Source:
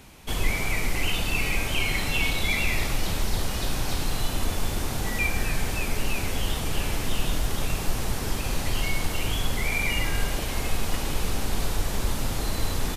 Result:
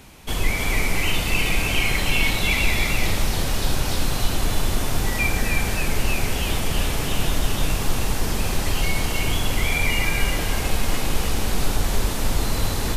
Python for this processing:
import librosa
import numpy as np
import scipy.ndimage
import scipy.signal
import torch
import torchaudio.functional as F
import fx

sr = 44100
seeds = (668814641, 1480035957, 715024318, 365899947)

y = x + 10.0 ** (-3.5 / 20.0) * np.pad(x, (int(314 * sr / 1000.0), 0))[:len(x)]
y = y * librosa.db_to_amplitude(3.0)